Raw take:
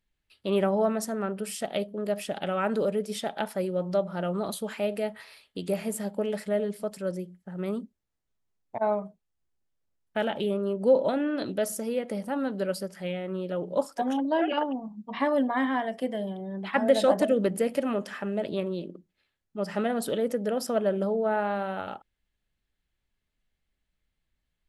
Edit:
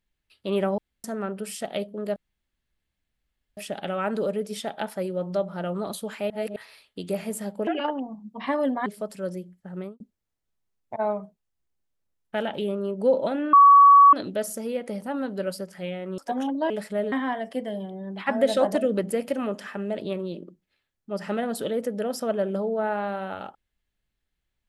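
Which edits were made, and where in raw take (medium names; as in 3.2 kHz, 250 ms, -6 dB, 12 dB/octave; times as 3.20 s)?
0.78–1.04 s: room tone
2.16 s: insert room tone 1.41 s
4.89–5.15 s: reverse
6.26–6.68 s: swap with 14.40–15.59 s
7.56–7.82 s: studio fade out
11.35 s: add tone 1.13 kHz -9 dBFS 0.60 s
13.40–13.88 s: delete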